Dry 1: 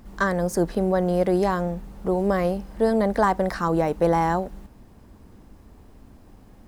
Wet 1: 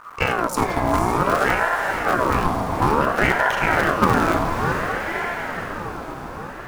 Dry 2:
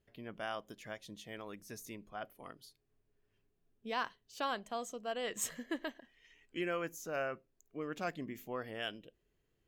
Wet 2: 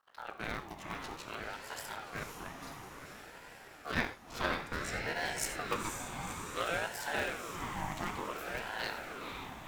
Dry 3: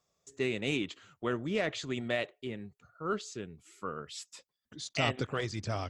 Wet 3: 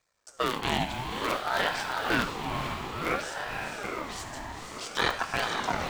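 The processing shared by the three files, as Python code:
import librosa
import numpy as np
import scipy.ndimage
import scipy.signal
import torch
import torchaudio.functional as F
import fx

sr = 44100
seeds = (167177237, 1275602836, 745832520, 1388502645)

p1 = fx.cycle_switch(x, sr, every=3, mode='muted')
p2 = fx.level_steps(p1, sr, step_db=18)
p3 = p1 + (p2 * librosa.db_to_amplitude(-2.5))
p4 = fx.echo_diffused(p3, sr, ms=504, feedback_pct=68, wet_db=-5)
p5 = fx.rev_gated(p4, sr, seeds[0], gate_ms=120, shape='flat', drr_db=8.0)
p6 = fx.ring_lfo(p5, sr, carrier_hz=840.0, swing_pct=45, hz=0.57)
y = p6 * librosa.db_to_amplitude(4.0)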